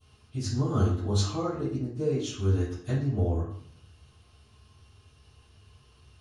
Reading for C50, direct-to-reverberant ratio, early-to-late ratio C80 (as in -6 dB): 2.0 dB, -23.0 dB, 6.5 dB